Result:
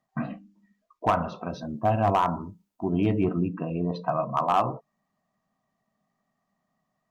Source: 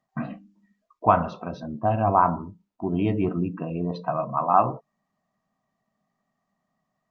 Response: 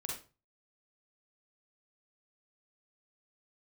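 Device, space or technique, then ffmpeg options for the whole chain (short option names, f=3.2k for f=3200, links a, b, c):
limiter into clipper: -filter_complex "[0:a]asettb=1/sr,asplit=3[a][b][c];[a]atrim=end=1.494[d];[b]atrim=start=1.49:end=2.9,asetpts=PTS-STARTPTS,afade=t=in:d=0.004:c=qsin,afade=t=out:st=1.406:d=0.004:c=qsin,aemphasis=mode=production:type=cd[e];[c]atrim=start=2.896[f];[d][e]acrossfade=d=0.004:c1=hsin:c2=qsin[g];[g][f]acrossfade=d=0.004:c1=qsin:c2=hsin,alimiter=limit=-9dB:level=0:latency=1:release=257,asoftclip=type=hard:threshold=-14.5dB"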